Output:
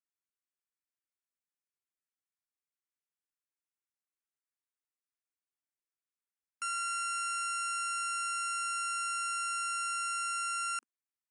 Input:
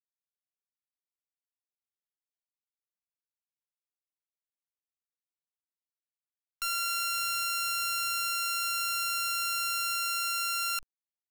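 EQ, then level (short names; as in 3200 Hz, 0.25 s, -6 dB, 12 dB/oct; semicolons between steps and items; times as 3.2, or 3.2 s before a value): brick-wall FIR band-pass 230–10000 Hz; fixed phaser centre 1600 Hz, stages 4; 0.0 dB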